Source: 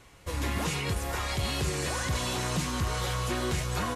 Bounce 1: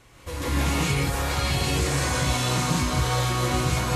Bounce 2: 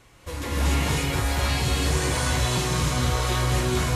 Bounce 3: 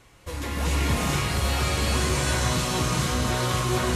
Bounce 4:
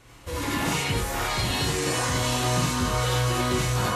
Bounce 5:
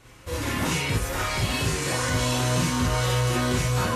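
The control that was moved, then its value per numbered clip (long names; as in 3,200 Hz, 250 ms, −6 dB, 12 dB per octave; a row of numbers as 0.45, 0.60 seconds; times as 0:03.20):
reverb whose tail is shaped and stops, gate: 210, 320, 500, 120, 80 milliseconds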